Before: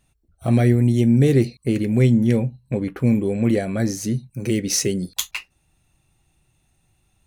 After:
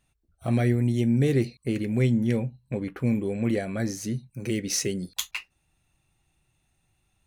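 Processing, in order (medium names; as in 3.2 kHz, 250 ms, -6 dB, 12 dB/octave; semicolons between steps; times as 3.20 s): peaking EQ 1.9 kHz +3.5 dB 2.5 oct; trim -7 dB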